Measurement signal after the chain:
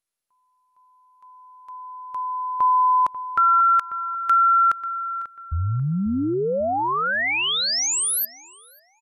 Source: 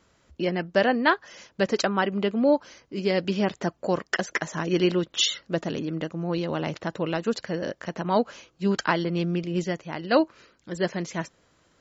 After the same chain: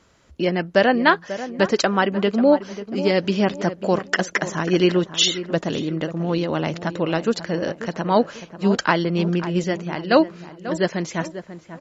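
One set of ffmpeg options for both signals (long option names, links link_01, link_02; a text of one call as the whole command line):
ffmpeg -i in.wav -filter_complex "[0:a]asplit=2[link_01][link_02];[link_02]adelay=541,lowpass=frequency=1600:poles=1,volume=-12dB,asplit=2[link_03][link_04];[link_04]adelay=541,lowpass=frequency=1600:poles=1,volume=0.37,asplit=2[link_05][link_06];[link_06]adelay=541,lowpass=frequency=1600:poles=1,volume=0.37,asplit=2[link_07][link_08];[link_08]adelay=541,lowpass=frequency=1600:poles=1,volume=0.37[link_09];[link_01][link_03][link_05][link_07][link_09]amix=inputs=5:normalize=0,volume=5dB" -ar 44100 -c:a mp2 -b:a 192k out.mp2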